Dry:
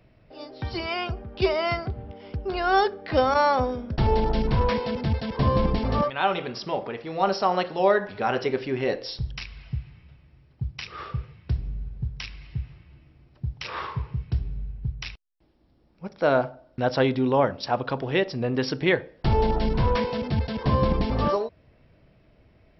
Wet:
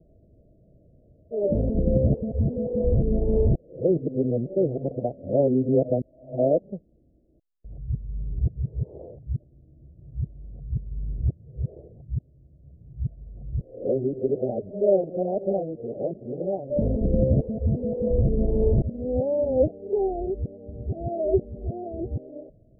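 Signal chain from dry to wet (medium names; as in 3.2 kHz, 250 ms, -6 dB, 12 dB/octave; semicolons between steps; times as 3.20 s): reverse the whole clip; steep low-pass 660 Hz 72 dB/octave; trim +1.5 dB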